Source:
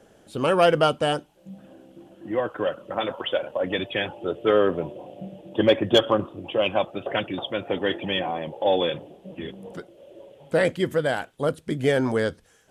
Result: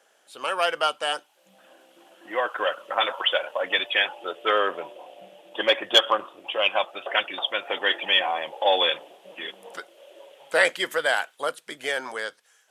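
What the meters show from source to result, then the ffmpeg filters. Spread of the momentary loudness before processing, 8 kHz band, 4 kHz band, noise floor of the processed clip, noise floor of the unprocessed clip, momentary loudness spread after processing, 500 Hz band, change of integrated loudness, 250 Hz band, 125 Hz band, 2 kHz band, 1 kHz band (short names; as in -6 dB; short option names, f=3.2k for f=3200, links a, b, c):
17 LU, n/a, +6.5 dB, -63 dBFS, -57 dBFS, 14 LU, -5.0 dB, 0.0 dB, -14.5 dB, under -25 dB, +6.0 dB, +1.5 dB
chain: -af "dynaudnorm=f=130:g=21:m=11.5dB,highpass=960"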